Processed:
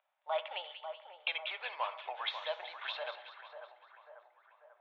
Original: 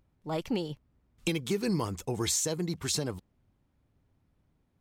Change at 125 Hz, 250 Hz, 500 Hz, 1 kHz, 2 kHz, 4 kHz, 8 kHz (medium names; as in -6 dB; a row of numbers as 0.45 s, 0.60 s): under -40 dB, under -40 dB, -6.5 dB, +2.5 dB, +2.5 dB, -3.0 dB, under -40 dB